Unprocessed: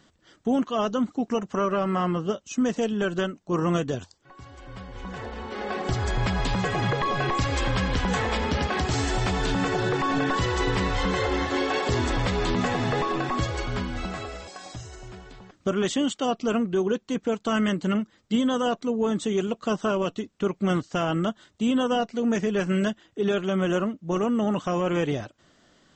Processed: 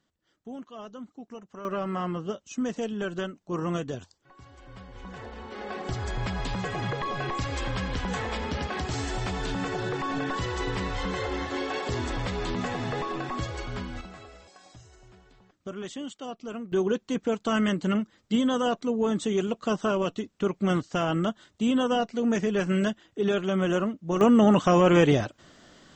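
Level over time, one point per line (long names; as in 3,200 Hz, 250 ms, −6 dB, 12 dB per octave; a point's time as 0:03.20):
−16.5 dB
from 0:01.65 −5.5 dB
from 0:14.01 −12 dB
from 0:16.72 −1 dB
from 0:24.21 +6 dB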